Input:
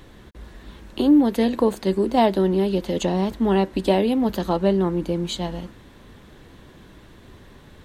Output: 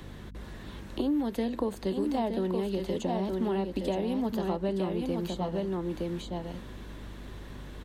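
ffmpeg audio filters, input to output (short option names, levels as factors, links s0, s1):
-filter_complex "[0:a]aeval=exprs='val(0)+0.00708*(sin(2*PI*50*n/s)+sin(2*PI*2*50*n/s)/2+sin(2*PI*3*50*n/s)/3+sin(2*PI*4*50*n/s)/4+sin(2*PI*5*50*n/s)/5)':c=same,aecho=1:1:917:0.501,acrossover=split=190|1000[s0][s1][s2];[s0]acompressor=threshold=0.01:ratio=4[s3];[s1]acompressor=threshold=0.0282:ratio=4[s4];[s2]acompressor=threshold=0.00501:ratio=4[s5];[s3][s4][s5]amix=inputs=3:normalize=0"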